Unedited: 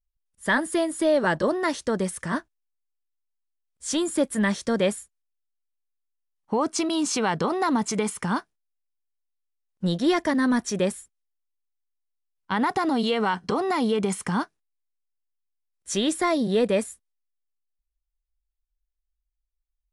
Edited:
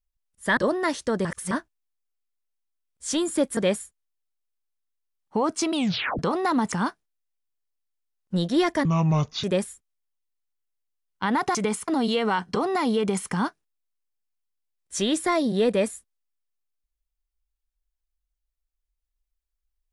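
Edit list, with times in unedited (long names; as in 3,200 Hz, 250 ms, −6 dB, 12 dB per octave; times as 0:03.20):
0:00.57–0:01.37: remove
0:02.05–0:02.31: reverse
0:04.37–0:04.74: remove
0:06.90: tape stop 0.46 s
0:07.89–0:08.22: move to 0:12.83
0:10.35–0:10.72: play speed 63%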